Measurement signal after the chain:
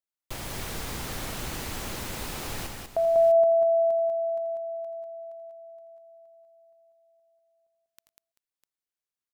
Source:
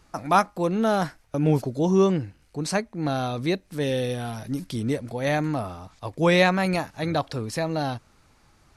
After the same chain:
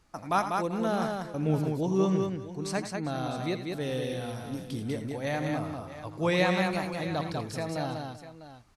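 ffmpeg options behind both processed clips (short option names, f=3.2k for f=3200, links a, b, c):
-af "aecho=1:1:84|85|104|194|388|651:0.266|0.106|0.119|0.631|0.133|0.2,volume=-7.5dB"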